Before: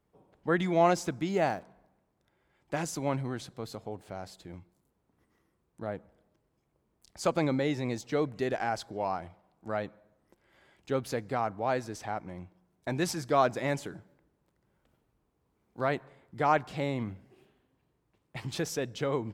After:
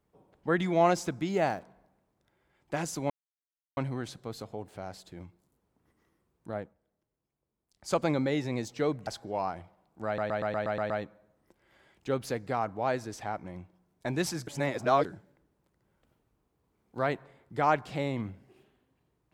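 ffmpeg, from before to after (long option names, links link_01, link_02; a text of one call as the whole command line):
ffmpeg -i in.wav -filter_complex "[0:a]asplit=14[link_01][link_02][link_03][link_04][link_05][link_06][link_07][link_08][link_09][link_10][link_11][link_12][link_13][link_14];[link_01]atrim=end=3.1,asetpts=PTS-STARTPTS,afade=type=out:start_time=3.096:duration=0.004:curve=hsin,apad=pad_dur=0.67[link_15];[link_02]atrim=start=3.1:end=6.07,asetpts=PTS-STARTPTS,afade=type=in:duration=0.004:curve=hsin,afade=type=out:start_time=2.81:duration=0.16:silence=0.266073[link_16];[link_03]atrim=start=6.07:end=7.08,asetpts=PTS-STARTPTS,volume=-11.5dB[link_17];[link_04]atrim=start=7.08:end=8.402,asetpts=PTS-STARTPTS,afade=type=in:duration=0.16:silence=0.266073[link_18];[link_05]atrim=start=8.728:end=9.842[link_19];[link_06]atrim=start=9.718:end=9.842[link_20];[link_07]atrim=start=9.718:end=9.842[link_21];[link_08]atrim=start=9.718:end=9.842[link_22];[link_09]atrim=start=9.718:end=9.842[link_23];[link_10]atrim=start=9.718:end=9.842[link_24];[link_11]atrim=start=9.718:end=9.842[link_25];[link_12]atrim=start=9.718:end=13.292[link_26];[link_13]atrim=start=13.288:end=13.872,asetpts=PTS-STARTPTS,areverse[link_27];[link_14]atrim=start=13.868[link_28];[link_15][link_16][link_17][link_18]concat=n=4:v=0:a=1[link_29];[link_29][link_19]acrossfade=duration=0.004:curve1=hsin:curve2=hsin[link_30];[link_30][link_20]acrossfade=duration=0.004:curve1=hsin:curve2=hsin[link_31];[link_31][link_21]acrossfade=duration=0.004:curve1=hsin:curve2=hsin[link_32];[link_32][link_22]acrossfade=duration=0.004:curve1=hsin:curve2=hsin[link_33];[link_33][link_23]acrossfade=duration=0.004:curve1=hsin:curve2=hsin[link_34];[link_34][link_24]acrossfade=duration=0.004:curve1=hsin:curve2=hsin[link_35];[link_35][link_25]acrossfade=duration=0.004:curve1=hsin:curve2=hsin[link_36];[link_36][link_26]acrossfade=duration=0.004:curve1=hsin:curve2=hsin[link_37];[link_37][link_27]acrossfade=duration=0.004:curve1=hsin:curve2=hsin[link_38];[link_38][link_28]acrossfade=duration=0.004:curve1=hsin:curve2=hsin" out.wav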